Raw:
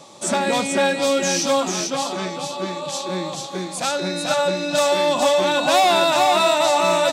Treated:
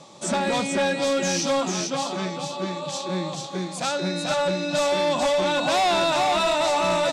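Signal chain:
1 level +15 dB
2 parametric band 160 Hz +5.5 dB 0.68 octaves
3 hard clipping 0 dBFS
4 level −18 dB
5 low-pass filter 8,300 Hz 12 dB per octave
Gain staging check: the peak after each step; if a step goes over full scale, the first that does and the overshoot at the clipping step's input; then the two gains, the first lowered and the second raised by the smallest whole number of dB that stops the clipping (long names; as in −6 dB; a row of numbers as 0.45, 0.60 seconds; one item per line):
+8.5, +8.0, 0.0, −18.0, −17.0 dBFS
step 1, 8.0 dB
step 1 +7 dB, step 4 −10 dB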